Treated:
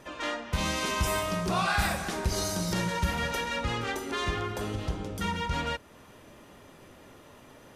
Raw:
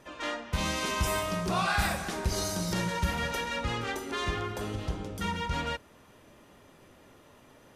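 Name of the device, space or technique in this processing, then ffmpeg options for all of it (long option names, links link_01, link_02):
parallel compression: -filter_complex "[0:a]asplit=2[link_01][link_02];[link_02]acompressor=threshold=-42dB:ratio=6,volume=-4dB[link_03];[link_01][link_03]amix=inputs=2:normalize=0"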